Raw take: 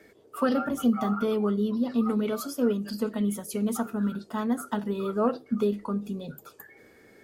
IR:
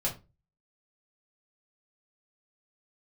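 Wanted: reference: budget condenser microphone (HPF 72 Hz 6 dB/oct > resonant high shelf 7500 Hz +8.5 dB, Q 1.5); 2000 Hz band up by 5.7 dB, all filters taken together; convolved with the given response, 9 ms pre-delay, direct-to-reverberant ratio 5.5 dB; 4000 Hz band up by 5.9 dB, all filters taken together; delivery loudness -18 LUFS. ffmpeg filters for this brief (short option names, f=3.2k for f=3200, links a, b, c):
-filter_complex "[0:a]equalizer=f=2k:t=o:g=7,equalizer=f=4k:t=o:g=7,asplit=2[a][b];[1:a]atrim=start_sample=2205,adelay=9[c];[b][c]afir=irnorm=-1:irlink=0,volume=-11dB[d];[a][d]amix=inputs=2:normalize=0,highpass=f=72:p=1,highshelf=f=7.5k:t=q:w=1.5:g=8.5,volume=8dB"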